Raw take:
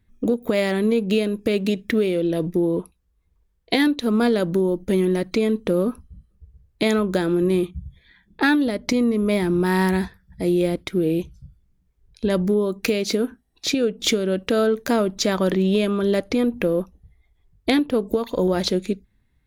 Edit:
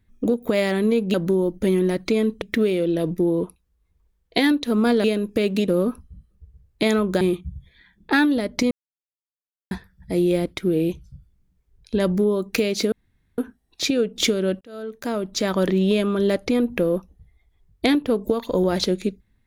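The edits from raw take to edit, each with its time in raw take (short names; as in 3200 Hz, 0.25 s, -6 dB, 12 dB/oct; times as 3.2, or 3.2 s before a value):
1.14–1.78 swap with 4.4–5.68
7.21–7.51 cut
9.01–10.01 mute
13.22 insert room tone 0.46 s
14.45–15.48 fade in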